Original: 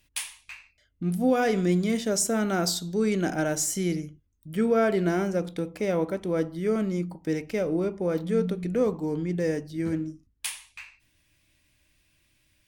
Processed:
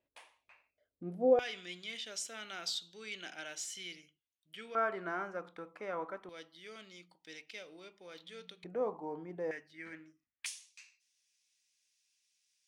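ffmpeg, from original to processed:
ffmpeg -i in.wav -af "asetnsamples=nb_out_samples=441:pad=0,asendcmd='1.39 bandpass f 3100;4.75 bandpass f 1200;6.29 bandpass f 3500;8.64 bandpass f 830;9.51 bandpass f 2000;10.46 bandpass f 6000',bandpass=frequency=540:width_type=q:width=2.6:csg=0" out.wav

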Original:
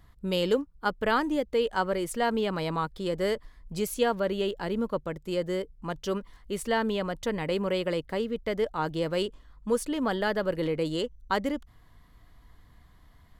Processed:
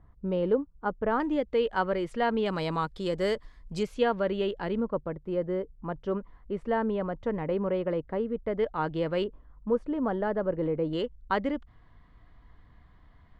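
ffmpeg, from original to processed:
ffmpeg -i in.wav -af "asetnsamples=nb_out_samples=441:pad=0,asendcmd='1.2 lowpass f 3000;2.46 lowpass f 7400;3.83 lowpass f 3000;4.8 lowpass f 1300;8.59 lowpass f 2600;9.24 lowpass f 1100;10.93 lowpass f 2700',lowpass=1100" out.wav

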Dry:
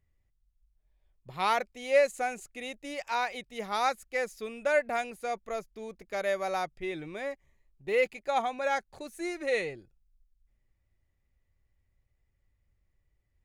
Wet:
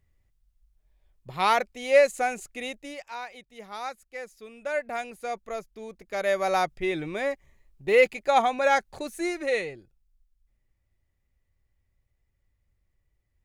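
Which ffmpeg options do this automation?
ffmpeg -i in.wav -af "volume=19.5dB,afade=type=out:start_time=2.65:duration=0.42:silence=0.251189,afade=type=in:start_time=4.44:duration=0.82:silence=0.398107,afade=type=in:start_time=6.05:duration=0.53:silence=0.473151,afade=type=out:start_time=9.08:duration=0.58:silence=0.446684" out.wav

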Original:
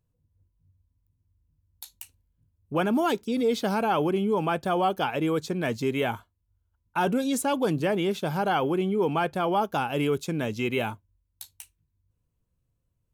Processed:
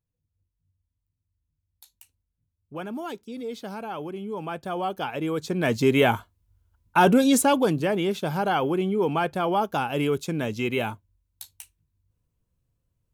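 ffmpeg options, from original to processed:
ffmpeg -i in.wav -af "volume=7.5dB,afade=type=in:start_time=4.15:duration=1.22:silence=0.398107,afade=type=in:start_time=5.37:duration=0.56:silence=0.354813,afade=type=out:start_time=7.36:duration=0.4:silence=0.473151" out.wav

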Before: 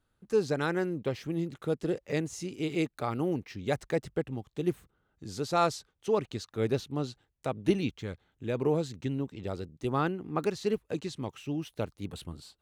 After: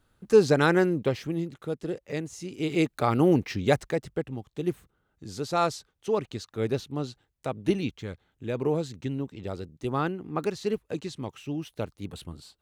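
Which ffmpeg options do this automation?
ffmpeg -i in.wav -af "volume=21dB,afade=type=out:start_time=0.76:duration=0.8:silence=0.316228,afade=type=in:start_time=2.4:duration=1.09:silence=0.237137,afade=type=out:start_time=3.49:duration=0.47:silence=0.316228" out.wav

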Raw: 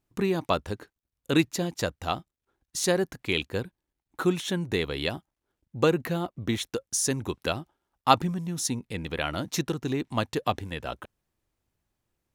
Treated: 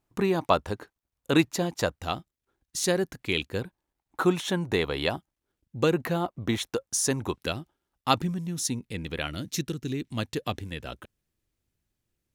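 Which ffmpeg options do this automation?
ffmpeg -i in.wav -af "asetnsamples=nb_out_samples=441:pad=0,asendcmd='1.99 equalizer g -2.5;3.62 equalizer g 6.5;5.16 equalizer g -4;5.93 equalizer g 5;7.36 equalizer g -5.5;9.27 equalizer g -15;10.19 equalizer g -8',equalizer=frequency=880:width_type=o:width=1.5:gain=5" out.wav

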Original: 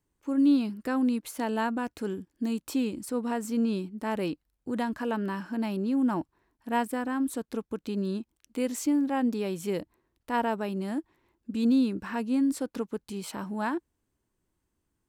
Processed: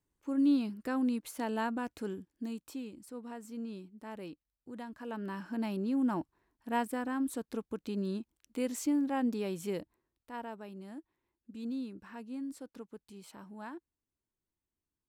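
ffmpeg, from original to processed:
ffmpeg -i in.wav -af "volume=4.5dB,afade=type=out:start_time=1.99:duration=0.83:silence=0.354813,afade=type=in:start_time=4.96:duration=0.58:silence=0.334965,afade=type=out:start_time=9.61:duration=0.7:silence=0.316228" out.wav

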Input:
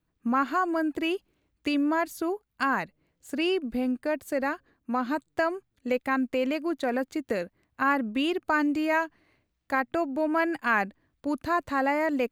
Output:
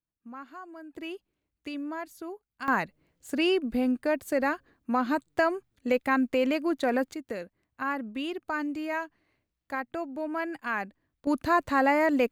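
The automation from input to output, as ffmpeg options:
ffmpeg -i in.wav -af "asetnsamples=nb_out_samples=441:pad=0,asendcmd='0.93 volume volume -10dB;2.68 volume volume 1.5dB;7.14 volume volume -6.5dB;11.27 volume volume 2.5dB',volume=-18dB" out.wav

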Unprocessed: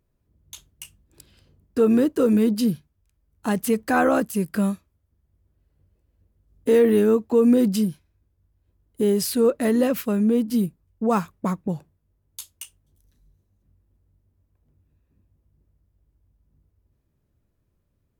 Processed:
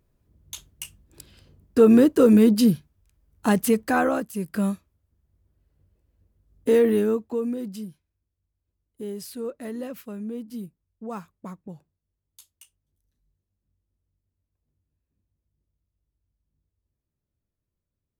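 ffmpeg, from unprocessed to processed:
ffmpeg -i in.wav -af "volume=10.5dB,afade=type=out:start_time=3.47:duration=0.8:silence=0.266073,afade=type=in:start_time=4.27:duration=0.45:silence=0.446684,afade=type=out:start_time=6.71:duration=0.84:silence=0.237137" out.wav

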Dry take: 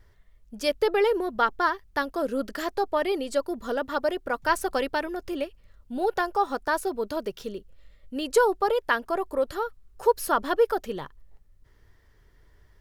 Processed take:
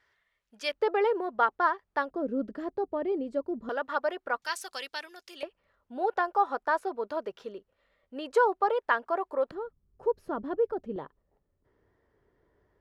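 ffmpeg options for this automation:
ffmpeg -i in.wav -af "asetnsamples=nb_out_samples=441:pad=0,asendcmd='0.73 bandpass f 850;2.11 bandpass f 230;3.69 bandpass f 1200;4.42 bandpass f 4700;5.43 bandpass f 940;9.51 bandpass f 190;10.96 bandpass f 450',bandpass=frequency=2100:width_type=q:width=0.81:csg=0" out.wav

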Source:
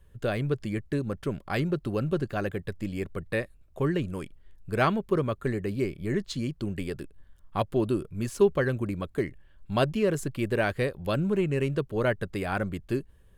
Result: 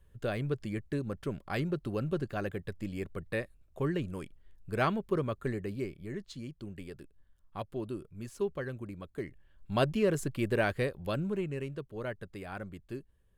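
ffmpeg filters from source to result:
ffmpeg -i in.wav -af "volume=4dB,afade=type=out:start_time=5.49:duration=0.64:silence=0.473151,afade=type=in:start_time=9.1:duration=0.81:silence=0.354813,afade=type=out:start_time=10.6:duration=1.14:silence=0.334965" out.wav

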